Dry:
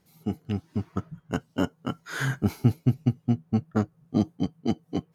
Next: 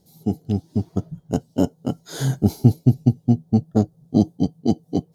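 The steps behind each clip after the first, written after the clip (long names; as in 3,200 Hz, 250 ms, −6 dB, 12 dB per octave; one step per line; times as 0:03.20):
flat-topped bell 1,700 Hz −16 dB
level +7 dB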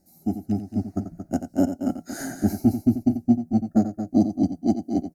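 phaser with its sweep stopped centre 680 Hz, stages 8
loudspeakers that aren't time-aligned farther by 30 metres −10 dB, 78 metres −9 dB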